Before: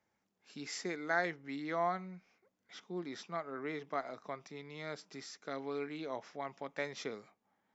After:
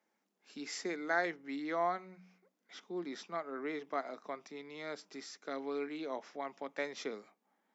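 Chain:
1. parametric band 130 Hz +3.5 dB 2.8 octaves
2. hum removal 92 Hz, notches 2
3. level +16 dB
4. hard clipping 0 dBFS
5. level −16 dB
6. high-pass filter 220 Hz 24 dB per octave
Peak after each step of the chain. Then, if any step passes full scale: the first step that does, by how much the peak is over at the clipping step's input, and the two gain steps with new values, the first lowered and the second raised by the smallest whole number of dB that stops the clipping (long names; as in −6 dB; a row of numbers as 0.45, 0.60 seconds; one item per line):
−19.5, −19.5, −3.5, −3.5, −19.5, −19.0 dBFS
no step passes full scale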